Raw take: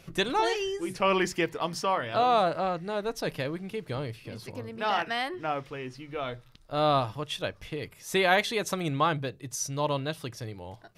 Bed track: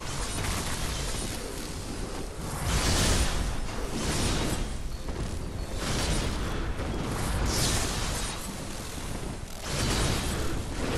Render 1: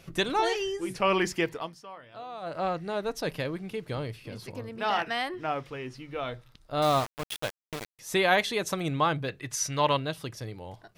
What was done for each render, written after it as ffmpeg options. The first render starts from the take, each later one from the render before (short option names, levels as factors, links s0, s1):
-filter_complex "[0:a]asettb=1/sr,asplit=3[s0][s1][s2];[s0]atrim=end=6.824[s3];[s1]atrim=start=6.82:end=7.99,asetpts=PTS-STARTPTS,afade=t=in:d=0.004:c=qsin,afade=t=out:st=1.166:d=0.004:c=qsin,aeval=exprs='val(0)*gte(abs(val(0)),0.0316)':c=same[s4];[s2]atrim=start=7.986[s5];[s3][s4]acrossfade=d=0.004:c1=hsin:c2=qsin[s6];[s6][s5]acrossfade=d=0.004:c1=qsin:c2=hsin,asettb=1/sr,asplit=3[s7][s8][s9];[s7]atrim=end=9.284[s10];[s8]atrim=start=9.28:end=9.97,asetpts=PTS-STARTPTS,afade=t=in:d=0.004:c=qsin,afade=t=out:st=0.686:d=0.004:c=qsin,equalizer=f=1900:t=o:w=1.9:g=12[s11];[s9]atrim=start=9.966[s12];[s10][s11]acrossfade=d=0.004:c1=hsin:c2=qsin[s13];[s13][s12]acrossfade=d=0.004:c1=qsin:c2=hsin,asplit=3[s14][s15][s16];[s14]atrim=end=1.75,asetpts=PTS-STARTPTS,afade=t=out:st=1.51:d=0.24:silence=0.133352[s17];[s15]atrim=start=1.75:end=2.41,asetpts=PTS-STARTPTS,volume=0.133[s18];[s16]atrim=start=2.41,asetpts=PTS-STARTPTS,afade=t=in:d=0.24:silence=0.133352[s19];[s17][s18][s19]concat=n=3:v=0:a=1"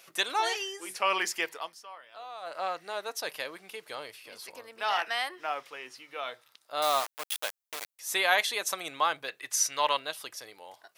-af "highpass=720,highshelf=f=7200:g=9"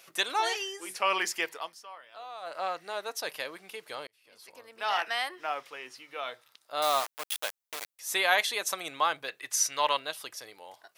-filter_complex "[0:a]asplit=2[s0][s1];[s0]atrim=end=4.07,asetpts=PTS-STARTPTS,afade=t=out:st=4.066:d=0.004:c=hsin[s2];[s1]atrim=start=4.07,asetpts=PTS-STARTPTS,afade=t=in:d=0.89[s3];[s2][s3]concat=n=2:v=0:a=1"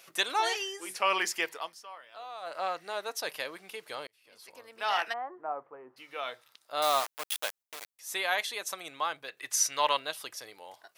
-filter_complex "[0:a]asplit=3[s0][s1][s2];[s0]afade=t=out:st=5.12:d=0.02[s3];[s1]lowpass=f=1100:w=0.5412,lowpass=f=1100:w=1.3066,afade=t=in:st=5.12:d=0.02,afade=t=out:st=5.96:d=0.02[s4];[s2]afade=t=in:st=5.96:d=0.02[s5];[s3][s4][s5]amix=inputs=3:normalize=0,asplit=3[s6][s7][s8];[s6]atrim=end=7.632[s9];[s7]atrim=start=7.628:end=9.372,asetpts=PTS-STARTPTS,volume=0.562[s10];[s8]atrim=start=9.368[s11];[s9][s10]acrossfade=d=0.004:c1=hsin:c2=hsin[s12];[s12][s11]acrossfade=d=0.004:c1=hsin:c2=hsin"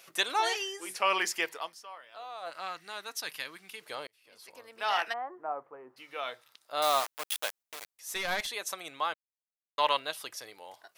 -filter_complex "[0:a]asettb=1/sr,asplit=3[s0][s1][s2];[s0]atrim=end=2.504[s3];[s1]atrim=start=2.5:end=3.81,asetpts=PTS-STARTPTS,afade=t=in:d=0.004:c=qsin,afade=t=out:st=1.306:d=0.004:c=qsin,equalizer=f=560:t=o:w=1.3:g=-12.5[s4];[s2]atrim=start=3.806[s5];[s3][s4]acrossfade=d=0.004:c1=hsin:c2=qsin[s6];[s6][s5]acrossfade=d=0.004:c1=qsin:c2=hsin,asettb=1/sr,asplit=3[s7][s8][s9];[s7]atrim=end=7.824[s10];[s8]atrim=start=7.82:end=8.47,asetpts=PTS-STARTPTS,afade=t=in:d=0.004:c=qsin,afade=t=out:st=0.646:d=0.004:c=qsin,aeval=exprs='clip(val(0),-1,0.0224)':c=same[s11];[s9]atrim=start=8.466[s12];[s10][s11]acrossfade=d=0.004:c1=hsin:c2=qsin[s13];[s13][s12]acrossfade=d=0.004:c1=qsin:c2=hsin,asplit=3[s14][s15][s16];[s14]atrim=end=9.14,asetpts=PTS-STARTPTS,afade=t=out:st=9.136:d=0.004:c=hsin[s17];[s15]atrim=start=9.14:end=9.78,asetpts=PTS-STARTPTS,volume=0[s18];[s16]atrim=start=9.78,asetpts=PTS-STARTPTS,afade=t=in:d=0.004:c=hsin[s19];[s17][s18][s19]concat=n=3:v=0:a=1"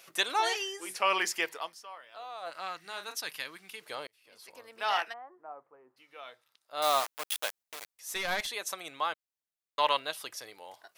-filter_complex "[0:a]asettb=1/sr,asplit=3[s0][s1][s2];[s0]atrim=end=2.804[s3];[s1]atrim=start=2.8:end=3.21,asetpts=PTS-STARTPTS,afade=t=in:d=0.004:c=qsin,afade=t=out:st=0.406:d=0.004:c=qsin,asplit=2[s4][s5];[s5]adelay=36,volume=0.398[s6];[s4][s6]amix=inputs=2:normalize=0,atrim=end_sample=18081[s7];[s2]atrim=start=3.206[s8];[s3][s7]acrossfade=d=0.004:c1=hsin:c2=qsin[s9];[s9][s8]acrossfade=d=0.004:c1=qsin:c2=hsin,asplit=3[s10][s11][s12];[s10]atrim=end=5.22,asetpts=PTS-STARTPTS,afade=t=out:st=4.97:d=0.25:c=qua:silence=0.316228[s13];[s11]atrim=start=5.22:end=6.61,asetpts=PTS-STARTPTS,volume=0.316[s14];[s12]atrim=start=6.61,asetpts=PTS-STARTPTS,afade=t=in:d=0.25:c=qua:silence=0.316228[s15];[s13][s14][s15]concat=n=3:v=0:a=1"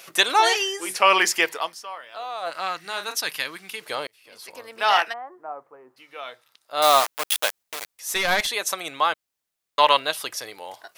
-af "volume=3.35,alimiter=limit=0.708:level=0:latency=1"